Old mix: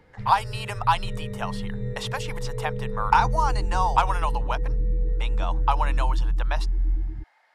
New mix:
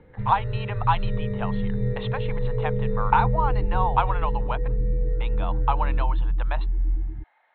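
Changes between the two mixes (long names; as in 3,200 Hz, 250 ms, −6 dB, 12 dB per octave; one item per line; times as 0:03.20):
speech: add Chebyshev low-pass filter 4,100 Hz, order 8
first sound +5.5 dB
master: add high-frequency loss of the air 210 metres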